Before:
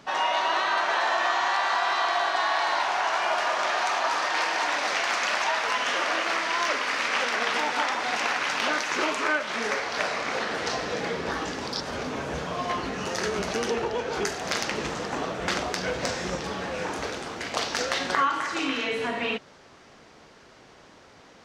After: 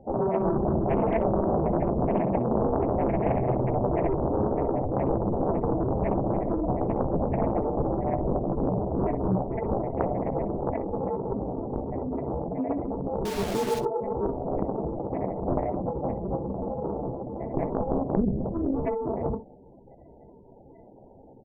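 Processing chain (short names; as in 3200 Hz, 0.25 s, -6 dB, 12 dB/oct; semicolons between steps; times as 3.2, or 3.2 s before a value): sample-and-hold 33×; spectral gate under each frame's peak -10 dB strong; 13.25–13.79 requantised 6-bit, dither none; on a send: early reflections 15 ms -8.5 dB, 63 ms -14.5 dB; on the sum: Doppler distortion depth 0.91 ms; gain +1.5 dB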